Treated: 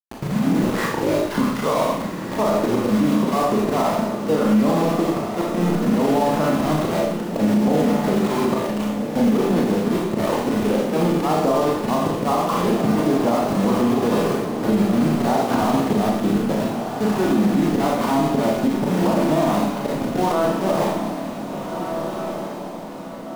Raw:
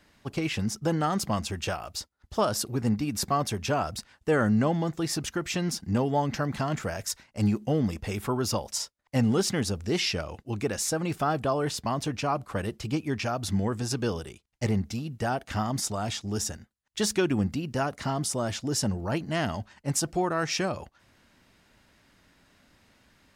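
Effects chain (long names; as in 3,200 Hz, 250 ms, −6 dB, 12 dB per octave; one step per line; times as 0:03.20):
turntable start at the beginning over 2.13 s
Chebyshev band-pass filter 180–1,100 Hz, order 3
volume swells 296 ms
downward compressor 8 to 1, threshold −43 dBFS, peak gain reduction 20.5 dB
centre clipping without the shift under −51.5 dBFS
on a send: feedback delay with all-pass diffusion 1,577 ms, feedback 45%, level −8 dB
on the sum: four-comb reverb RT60 0.76 s, combs from 26 ms, DRR −2.5 dB
boost into a limiter +33.5 dB
level −8.5 dB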